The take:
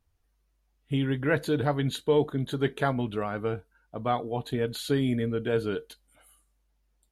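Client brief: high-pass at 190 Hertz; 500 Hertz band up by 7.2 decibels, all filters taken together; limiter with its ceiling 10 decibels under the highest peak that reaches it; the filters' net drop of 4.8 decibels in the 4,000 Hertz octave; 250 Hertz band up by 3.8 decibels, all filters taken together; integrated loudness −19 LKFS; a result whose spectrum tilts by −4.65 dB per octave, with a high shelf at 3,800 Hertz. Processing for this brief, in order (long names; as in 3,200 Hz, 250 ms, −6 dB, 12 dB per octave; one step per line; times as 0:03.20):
high-pass filter 190 Hz
parametric band 250 Hz +3.5 dB
parametric band 500 Hz +7.5 dB
high-shelf EQ 3,800 Hz +5 dB
parametric band 4,000 Hz −9 dB
level +8.5 dB
brickwall limiter −8 dBFS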